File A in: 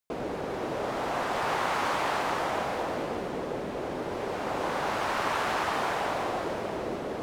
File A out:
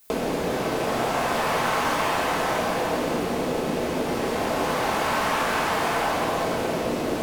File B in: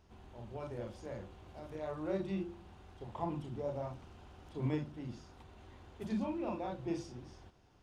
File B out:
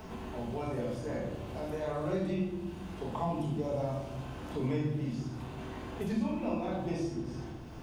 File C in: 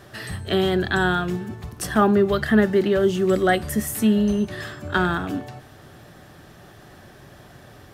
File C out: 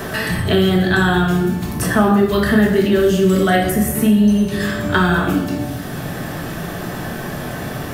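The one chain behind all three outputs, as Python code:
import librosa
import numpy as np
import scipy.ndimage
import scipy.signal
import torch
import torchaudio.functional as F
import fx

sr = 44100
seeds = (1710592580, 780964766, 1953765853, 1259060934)

y = fx.high_shelf(x, sr, hz=8500.0, db=12.0)
y = fx.room_shoebox(y, sr, seeds[0], volume_m3=220.0, walls='mixed', distance_m=1.5)
y = fx.band_squash(y, sr, depth_pct=70)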